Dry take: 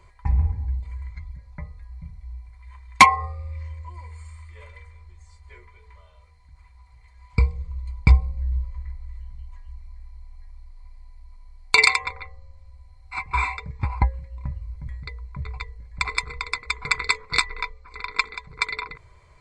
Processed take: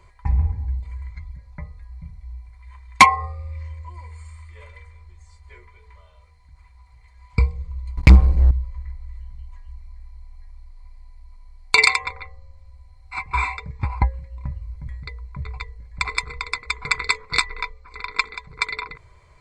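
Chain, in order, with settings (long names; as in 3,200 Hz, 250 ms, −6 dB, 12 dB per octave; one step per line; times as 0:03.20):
0:07.97–0:08.51: leveller curve on the samples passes 3
level +1 dB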